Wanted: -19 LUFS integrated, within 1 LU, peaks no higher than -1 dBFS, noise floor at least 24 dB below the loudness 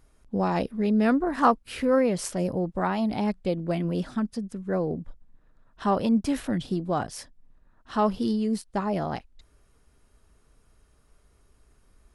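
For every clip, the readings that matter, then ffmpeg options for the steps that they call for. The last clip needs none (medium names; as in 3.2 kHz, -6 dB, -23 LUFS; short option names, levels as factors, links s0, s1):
loudness -27.0 LUFS; peak level -7.5 dBFS; loudness target -19.0 LUFS
-> -af "volume=2.51,alimiter=limit=0.891:level=0:latency=1"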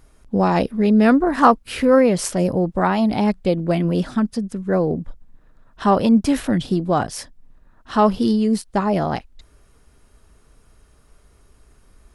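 loudness -19.0 LUFS; peak level -1.0 dBFS; noise floor -55 dBFS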